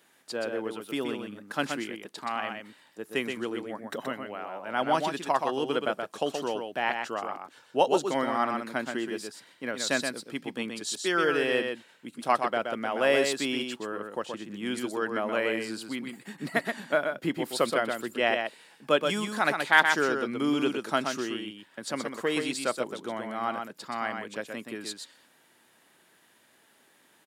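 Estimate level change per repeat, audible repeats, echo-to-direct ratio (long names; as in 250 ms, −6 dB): repeats not evenly spaced, 1, −5.5 dB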